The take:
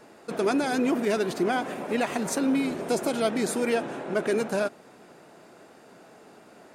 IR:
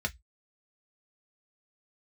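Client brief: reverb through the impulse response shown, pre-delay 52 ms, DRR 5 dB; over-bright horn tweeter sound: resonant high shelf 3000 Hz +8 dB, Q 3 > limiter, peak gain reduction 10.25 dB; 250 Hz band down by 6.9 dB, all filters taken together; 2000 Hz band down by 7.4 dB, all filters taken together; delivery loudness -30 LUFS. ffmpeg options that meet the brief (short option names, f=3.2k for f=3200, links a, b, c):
-filter_complex "[0:a]equalizer=f=250:t=o:g=-8,equalizer=f=2k:t=o:g=-6,asplit=2[a][b];[1:a]atrim=start_sample=2205,adelay=52[c];[b][c]afir=irnorm=-1:irlink=0,volume=-10dB[d];[a][d]amix=inputs=2:normalize=0,highshelf=f=3k:t=q:w=3:g=8,volume=-1dB,alimiter=limit=-19.5dB:level=0:latency=1"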